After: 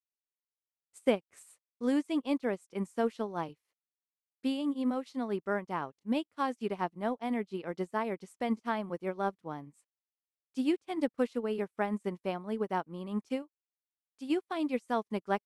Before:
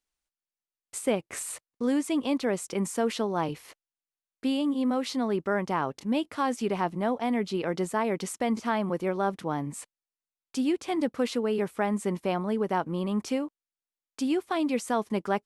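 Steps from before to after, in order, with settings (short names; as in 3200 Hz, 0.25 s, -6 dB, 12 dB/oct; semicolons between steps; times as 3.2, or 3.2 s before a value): 13.42–14.3 bell 210 Hz -3.5 dB 1.9 oct; upward expander 2.5:1, over -45 dBFS; gain +1 dB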